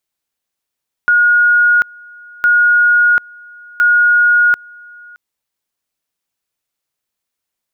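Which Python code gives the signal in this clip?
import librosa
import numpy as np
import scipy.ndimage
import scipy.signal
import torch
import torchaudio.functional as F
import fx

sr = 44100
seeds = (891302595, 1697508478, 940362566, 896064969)

y = fx.two_level_tone(sr, hz=1440.0, level_db=-7.0, drop_db=27.0, high_s=0.74, low_s=0.62, rounds=3)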